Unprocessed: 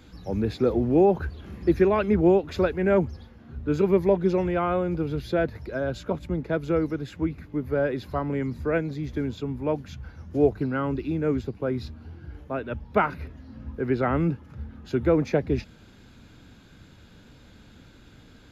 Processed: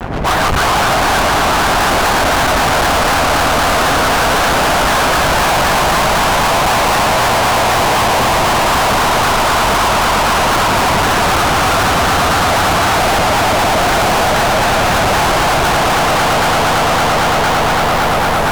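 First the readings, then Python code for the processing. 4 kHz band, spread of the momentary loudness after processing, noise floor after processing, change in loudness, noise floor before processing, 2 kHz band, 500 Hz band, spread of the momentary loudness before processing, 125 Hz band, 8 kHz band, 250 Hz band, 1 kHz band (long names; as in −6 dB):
+32.0 dB, 1 LU, −13 dBFS, +14.0 dB, −51 dBFS, +24.0 dB, +9.0 dB, 14 LU, +9.5 dB, can't be measured, +5.5 dB, +23.5 dB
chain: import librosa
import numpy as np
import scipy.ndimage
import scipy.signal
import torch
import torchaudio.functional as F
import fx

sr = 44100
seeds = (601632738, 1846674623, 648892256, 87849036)

p1 = fx.octave_mirror(x, sr, pivot_hz=750.0)
p2 = p1 + 10.0 ** (-5.5 / 20.0) * np.pad(p1, (int(142 * sr / 1000.0), 0))[:len(p1)]
p3 = (np.mod(10.0 ** (22.5 / 20.0) * p2 + 1.0, 2.0) - 1.0) / 10.0 ** (22.5 / 20.0)
p4 = fx.lpc_vocoder(p3, sr, seeds[0], excitation='whisper', order=8)
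p5 = scipy.signal.sosfilt(scipy.signal.butter(16, 1700.0, 'lowpass', fs=sr, output='sos'), p4)
p6 = fx.peak_eq(p5, sr, hz=720.0, db=13.5, octaves=0.8)
p7 = p6 + fx.echo_swell(p6, sr, ms=113, loudest=8, wet_db=-7, dry=0)
p8 = fx.fuzz(p7, sr, gain_db=50.0, gate_db=-53.0)
p9 = fx.vibrato_shape(p8, sr, shape='saw_down', rate_hz=3.9, depth_cents=160.0)
y = F.gain(torch.from_numpy(p9), 1.5).numpy()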